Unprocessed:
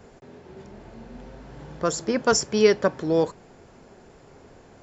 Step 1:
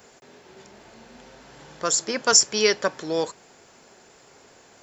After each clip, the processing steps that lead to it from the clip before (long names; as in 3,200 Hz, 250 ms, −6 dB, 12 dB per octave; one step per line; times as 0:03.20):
spectral tilt +3.5 dB per octave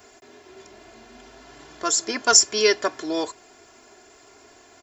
comb filter 2.9 ms, depth 81%
level −1 dB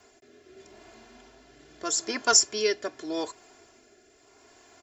rotating-speaker cabinet horn 0.8 Hz
level −3.5 dB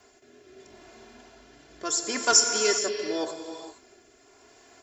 reverb whose tail is shaped and stops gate 490 ms flat, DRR 4 dB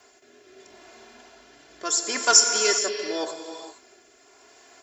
low-shelf EQ 260 Hz −12 dB
level +3.5 dB